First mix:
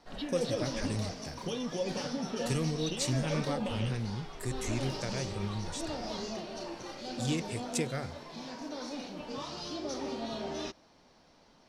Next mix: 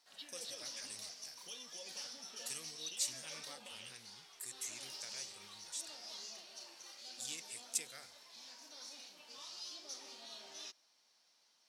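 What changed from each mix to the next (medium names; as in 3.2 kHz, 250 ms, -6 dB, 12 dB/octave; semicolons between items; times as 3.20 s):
master: add differentiator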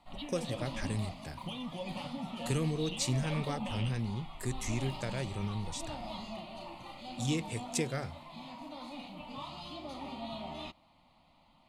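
background: add static phaser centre 1.6 kHz, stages 6; master: remove differentiator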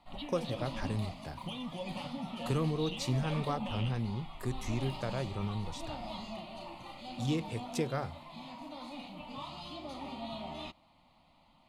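speech: add graphic EQ 1/2/8 kHz +10/-6/-11 dB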